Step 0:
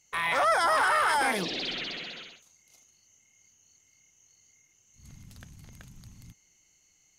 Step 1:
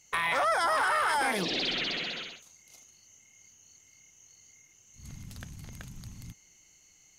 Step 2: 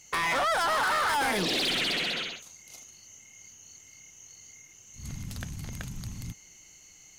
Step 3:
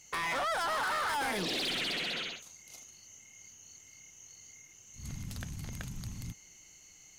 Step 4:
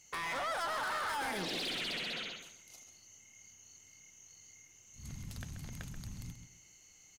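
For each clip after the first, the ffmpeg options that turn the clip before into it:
ffmpeg -i in.wav -af "acompressor=threshold=-33dB:ratio=2.5,volume=5dB" out.wav
ffmpeg -i in.wav -af "asoftclip=type=tanh:threshold=-31dB,volume=7dB" out.wav
ffmpeg -i in.wav -af "alimiter=level_in=3dB:limit=-24dB:level=0:latency=1,volume=-3dB,volume=-3dB" out.wav
ffmpeg -i in.wav -filter_complex "[0:a]asplit=2[link_01][link_02];[link_02]adelay=133,lowpass=frequency=4900:poles=1,volume=-8.5dB,asplit=2[link_03][link_04];[link_04]adelay=133,lowpass=frequency=4900:poles=1,volume=0.27,asplit=2[link_05][link_06];[link_06]adelay=133,lowpass=frequency=4900:poles=1,volume=0.27[link_07];[link_01][link_03][link_05][link_07]amix=inputs=4:normalize=0,volume=-4.5dB" out.wav

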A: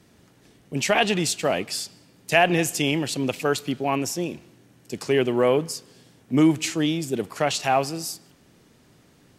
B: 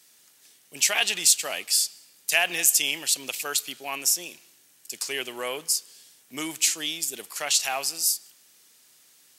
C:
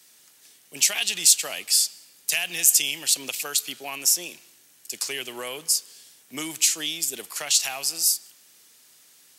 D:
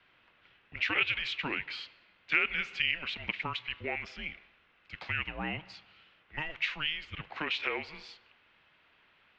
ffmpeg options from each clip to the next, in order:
ffmpeg -i in.wav -af "aderivative,volume=9dB" out.wav
ffmpeg -i in.wav -filter_complex "[0:a]acrossover=split=210|3000[link_01][link_02][link_03];[link_02]acompressor=threshold=-35dB:ratio=6[link_04];[link_01][link_04][link_03]amix=inputs=3:normalize=0,volume=2.5dB" out.wav
ffmpeg -i in.wav -af "asubboost=boost=4.5:cutoff=140,highpass=frequency=360:width_type=q:width=0.5412,highpass=frequency=360:width_type=q:width=1.307,lowpass=frequency=3200:width_type=q:width=0.5176,lowpass=frequency=3200:width_type=q:width=0.7071,lowpass=frequency=3200:width_type=q:width=1.932,afreqshift=-310" out.wav

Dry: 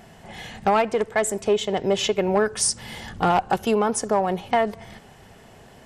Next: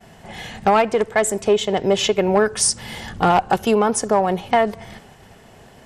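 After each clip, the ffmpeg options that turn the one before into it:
ffmpeg -i in.wav -af "agate=range=-33dB:threshold=-45dB:ratio=3:detection=peak,volume=4dB" out.wav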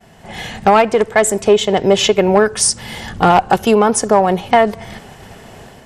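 ffmpeg -i in.wav -af "dynaudnorm=framelen=130:gausssize=5:maxgain=9dB" out.wav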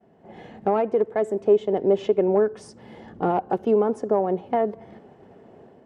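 ffmpeg -i in.wav -af "bandpass=frequency=360:width_type=q:width=1.3:csg=0,volume=-5.5dB" out.wav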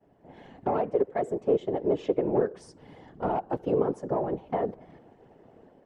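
ffmpeg -i in.wav -af "afftfilt=real='hypot(re,im)*cos(2*PI*random(0))':imag='hypot(re,im)*sin(2*PI*random(1))':win_size=512:overlap=0.75" out.wav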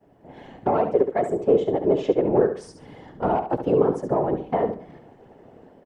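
ffmpeg -i in.wav -af "aecho=1:1:70|140|210:0.355|0.0923|0.024,volume=5.5dB" out.wav

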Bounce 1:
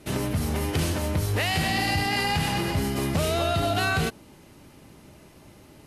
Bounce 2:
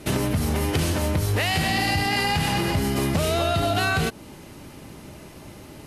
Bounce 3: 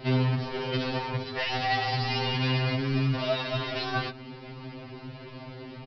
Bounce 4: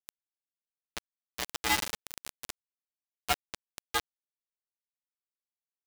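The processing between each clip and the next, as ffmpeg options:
ffmpeg -i in.wav -af "acompressor=threshold=-30dB:ratio=2.5,volume=8dB" out.wav
ffmpeg -i in.wav -af "aresample=11025,asoftclip=type=tanh:threshold=-24.5dB,aresample=44100,afftfilt=real='re*2.45*eq(mod(b,6),0)':imag='im*2.45*eq(mod(b,6),0)':win_size=2048:overlap=0.75,volume=3dB" out.wav
ffmpeg -i in.wav -af "highpass=frequency=600:width_type=q:width=0.5412,highpass=frequency=600:width_type=q:width=1.307,lowpass=frequency=3400:width_type=q:width=0.5176,lowpass=frequency=3400:width_type=q:width=0.7071,lowpass=frequency=3400:width_type=q:width=1.932,afreqshift=78,acrusher=bits=3:mix=0:aa=0.000001" out.wav

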